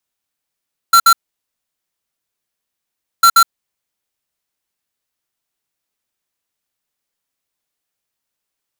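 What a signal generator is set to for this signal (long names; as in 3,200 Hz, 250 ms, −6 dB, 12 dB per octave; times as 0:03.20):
beeps in groups square 1,360 Hz, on 0.07 s, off 0.06 s, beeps 2, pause 2.10 s, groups 2, −7.5 dBFS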